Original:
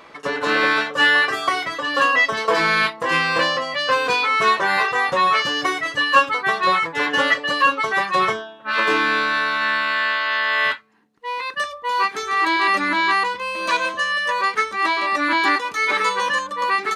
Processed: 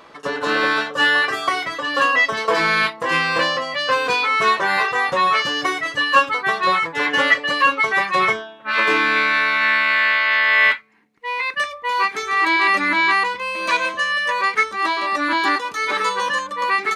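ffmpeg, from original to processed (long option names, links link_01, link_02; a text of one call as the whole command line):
ffmpeg -i in.wav -af "asetnsamples=nb_out_samples=441:pad=0,asendcmd='1.24 equalizer g 1;7.05 equalizer g 7.5;9.16 equalizer g 14;11.93 equalizer g 6.5;14.63 equalizer g -4;16.39 equalizer g 5',equalizer=frequency=2200:width_type=o:width=0.31:gain=-5.5" out.wav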